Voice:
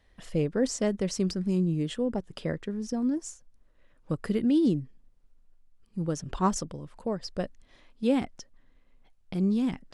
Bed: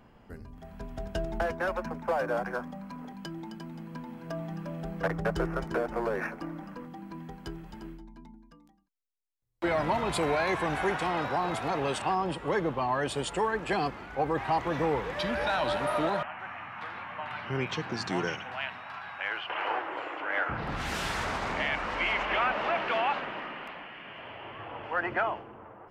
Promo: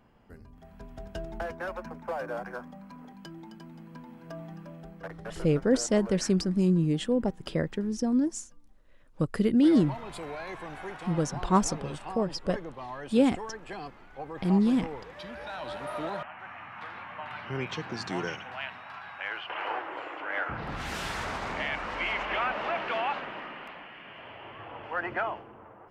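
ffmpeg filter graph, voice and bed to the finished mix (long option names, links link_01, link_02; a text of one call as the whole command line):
ffmpeg -i stem1.wav -i stem2.wav -filter_complex "[0:a]adelay=5100,volume=2.5dB[link_01];[1:a]volume=4dB,afade=type=out:start_time=4.45:duration=0.56:silence=0.501187,afade=type=in:start_time=15.46:duration=1.32:silence=0.354813[link_02];[link_01][link_02]amix=inputs=2:normalize=0" out.wav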